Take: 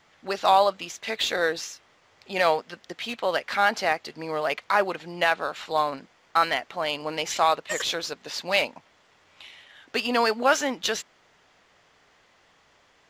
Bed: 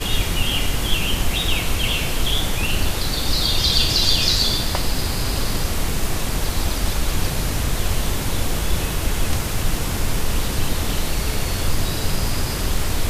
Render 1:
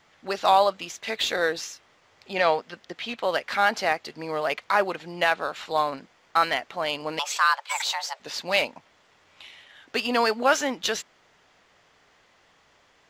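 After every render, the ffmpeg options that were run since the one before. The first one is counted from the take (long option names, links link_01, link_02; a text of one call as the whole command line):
ffmpeg -i in.wav -filter_complex "[0:a]asettb=1/sr,asplit=3[link_01][link_02][link_03];[link_01]atrim=end=2.334[link_04];[link_02]atrim=start=2.33:end=3.19,asetpts=PTS-STARTPTS,afade=type=in:duration=0.004:curve=qsin,afade=type=out:start_time=0.856:duration=0.004:curve=qsin,acrossover=split=5800[link_05][link_06];[link_06]acompressor=threshold=-59dB:ratio=4:attack=1:release=60[link_07];[link_05][link_07]amix=inputs=2:normalize=0[link_08];[link_03]atrim=start=3.186[link_09];[link_04][link_08]acrossfade=duration=0.004:curve1=hsin:curve2=qsin[link_10];[link_10][link_09]acrossfade=duration=0.004:curve1=qsin:curve2=hsin,asettb=1/sr,asplit=3[link_11][link_12][link_13];[link_11]atrim=end=7.194[link_14];[link_12]atrim=start=7.19:end=8.2,asetpts=PTS-STARTPTS,afade=type=in:duration=0.004:curve=qsin,afade=type=out:start_time=1.006:duration=0.004:curve=qsin,afreqshift=400[link_15];[link_13]atrim=start=8.196[link_16];[link_14][link_15]acrossfade=duration=0.004:curve1=hsin:curve2=qsin[link_17];[link_17][link_16]acrossfade=duration=0.004:curve1=qsin:curve2=hsin" out.wav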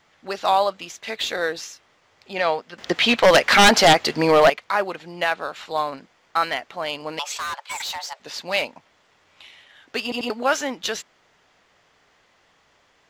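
ffmpeg -i in.wav -filter_complex "[0:a]asettb=1/sr,asplit=3[link_01][link_02][link_03];[link_01]atrim=end=2.784[link_04];[link_02]atrim=start=2.78:end=4.5,asetpts=PTS-STARTPTS,afade=type=in:duration=0.004:curve=qsin,afade=type=out:start_time=1.716:duration=0.004:curve=qsin,aeval=exprs='0.422*sin(PI/2*3.98*val(0)/0.422)':channel_layout=same[link_05];[link_03]atrim=start=4.496[link_06];[link_04][link_05]acrossfade=duration=0.004:curve1=hsin:curve2=qsin[link_07];[link_07][link_06]acrossfade=duration=0.004:curve1=qsin:curve2=hsin,asettb=1/sr,asplit=3[link_08][link_09][link_10];[link_08]atrim=end=7.374[link_11];[link_09]atrim=start=7.37:end=8.31,asetpts=PTS-STARTPTS,afade=type=in:duration=0.004:curve=qsin,afade=type=out:start_time=0.936:duration=0.004:curve=qsin,asoftclip=type=hard:threshold=-25.5dB[link_12];[link_10]atrim=start=8.306[link_13];[link_11][link_12]acrossfade=duration=0.004:curve1=hsin:curve2=qsin[link_14];[link_14][link_13]acrossfade=duration=0.004:curve1=qsin:curve2=hsin,asplit=4[link_15][link_16][link_17][link_18];[link_15]atrim=end=10.122[link_19];[link_16]atrim=start=10.028:end=10.122[link_20];[link_17]atrim=start=10.028:end=10.122[link_21];[link_18]atrim=start=10.298[link_22];[link_19][link_20]acrossfade=duration=0.004:curve1=hsin:curve2=hsin[link_23];[link_23][link_21]acrossfade=duration=0.004:curve1=hsin:curve2=hsin[link_24];[link_24][link_22]acrossfade=duration=0.004:curve1=hsin:curve2=hsin" out.wav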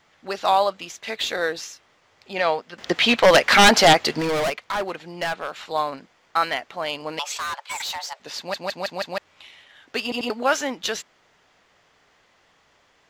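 ffmpeg -i in.wav -filter_complex "[0:a]asettb=1/sr,asplit=3[link_01][link_02][link_03];[link_01]atrim=end=4.194[link_04];[link_02]atrim=start=4.19:end=5.55,asetpts=PTS-STARTPTS,afade=type=in:duration=0.004:curve=qsin,afade=type=out:start_time=1.356:duration=0.004:curve=qsin,volume=21dB,asoftclip=hard,volume=-21dB[link_05];[link_03]atrim=start=5.546[link_06];[link_04][link_05]acrossfade=duration=0.004:curve1=hsin:curve2=qsin[link_07];[link_07][link_06]acrossfade=duration=0.004:curve1=qsin:curve2=hsin,asplit=6[link_08][link_09][link_10][link_11][link_12][link_13];[link_08]atrim=end=8.542[link_14];[link_09]atrim=start=8.378:end=8.542[link_15];[link_10]atrim=start=8.378:end=8.542[link_16];[link_11]atrim=start=8.378:end=8.542[link_17];[link_12]atrim=start=8.378:end=8.542[link_18];[link_13]atrim=start=9.178[link_19];[link_14][link_15]acrossfade=duration=0.004:curve1=hsin:curve2=hsin[link_20];[link_20][link_16]acrossfade=duration=0.004:curve1=hsin:curve2=hsin[link_21];[link_21][link_17]acrossfade=duration=0.004:curve1=hsin:curve2=hsin[link_22];[link_22][link_18]acrossfade=duration=0.004:curve1=hsin:curve2=hsin[link_23];[link_23][link_19]acrossfade=duration=0.004:curve1=hsin:curve2=hsin" out.wav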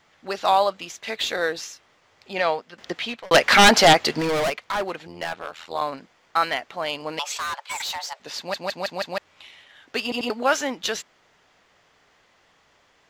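ffmpeg -i in.wav -filter_complex "[0:a]asettb=1/sr,asplit=3[link_01][link_02][link_03];[link_01]atrim=end=5.074[link_04];[link_02]atrim=start=5.07:end=5.82,asetpts=PTS-STARTPTS,afade=type=in:duration=0.004:curve=qsin,afade=type=out:start_time=0.746:duration=0.004:curve=qsin,tremolo=f=82:d=0.857[link_05];[link_03]atrim=start=5.816[link_06];[link_04][link_05]acrossfade=duration=0.004:curve1=hsin:curve2=qsin[link_07];[link_07][link_06]acrossfade=duration=0.004:curve1=qsin:curve2=hsin,asplit=2[link_08][link_09];[link_08]atrim=end=3.31,asetpts=PTS-STARTPTS,afade=type=out:start_time=2.37:duration=0.94[link_10];[link_09]atrim=start=3.31,asetpts=PTS-STARTPTS,afade=type=in:duration=0.004:curve=hsin[link_11];[link_10][link_11]concat=n=2:v=0:a=1" out.wav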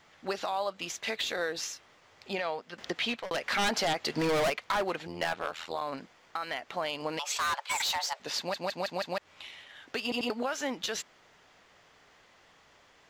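ffmpeg -i in.wav -af "acompressor=threshold=-26dB:ratio=10,alimiter=limit=-21dB:level=0:latency=1:release=141" out.wav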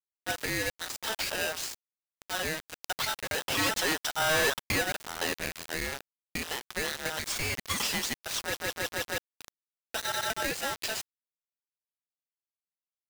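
ffmpeg -i in.wav -af "acrusher=bits=5:mix=0:aa=0.000001,aeval=exprs='val(0)*sgn(sin(2*PI*1100*n/s))':channel_layout=same" out.wav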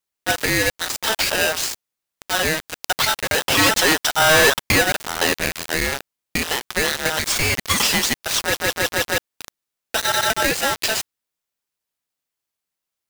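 ffmpeg -i in.wav -af "volume=12dB" out.wav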